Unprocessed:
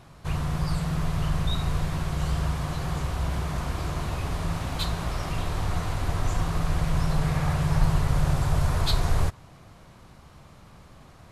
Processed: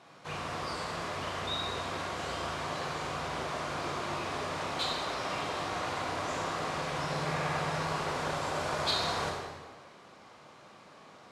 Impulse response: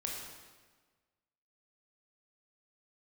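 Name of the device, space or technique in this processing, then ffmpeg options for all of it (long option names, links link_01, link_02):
supermarket ceiling speaker: -filter_complex "[0:a]highpass=330,lowpass=6800[link_01];[1:a]atrim=start_sample=2205[link_02];[link_01][link_02]afir=irnorm=-1:irlink=0"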